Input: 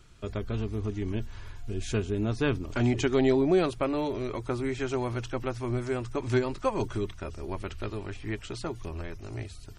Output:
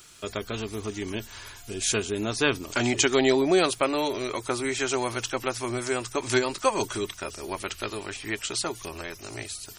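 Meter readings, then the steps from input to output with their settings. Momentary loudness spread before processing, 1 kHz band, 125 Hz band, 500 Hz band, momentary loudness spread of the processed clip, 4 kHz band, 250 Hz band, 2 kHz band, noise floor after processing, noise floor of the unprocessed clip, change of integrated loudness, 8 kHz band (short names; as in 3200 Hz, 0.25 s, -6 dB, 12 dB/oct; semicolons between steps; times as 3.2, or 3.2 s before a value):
13 LU, +6.0 dB, -6.0 dB, +2.5 dB, 14 LU, +12.0 dB, 0.0 dB, +8.5 dB, -46 dBFS, -45 dBFS, +3.0 dB, +16.5 dB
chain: RIAA curve recording; gain +6 dB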